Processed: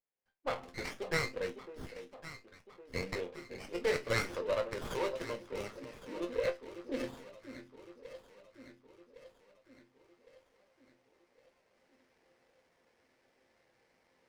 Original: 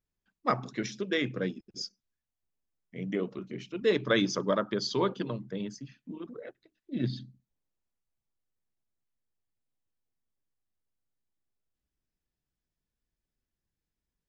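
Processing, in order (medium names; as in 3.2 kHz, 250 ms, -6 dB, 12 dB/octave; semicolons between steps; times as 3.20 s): recorder AGC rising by 9.4 dB/s; harmonic-percussive split percussive -4 dB; dynamic bell 2.8 kHz, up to +8 dB, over -51 dBFS, Q 0.77; in parallel at -3 dB: peak limiter -21 dBFS, peak gain reduction 10 dB; on the sum: cabinet simulation 400–5000 Hz, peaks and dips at 520 Hz +10 dB, 840 Hz +4 dB, 1.3 kHz -6 dB, 2.1 kHz +8 dB, 3.3 kHz +4 dB; chord resonator F2 sus4, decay 0.2 s; echo whose repeats swap between lows and highs 555 ms, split 1 kHz, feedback 70%, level -10.5 dB; sliding maximum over 9 samples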